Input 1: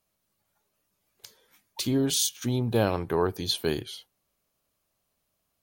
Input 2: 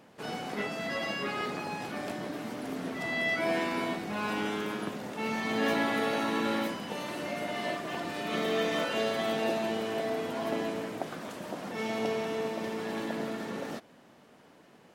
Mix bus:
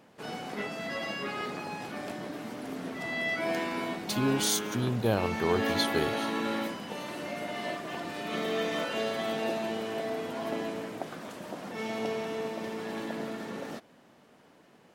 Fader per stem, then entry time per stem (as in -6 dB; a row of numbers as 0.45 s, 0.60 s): -3.0 dB, -1.5 dB; 2.30 s, 0.00 s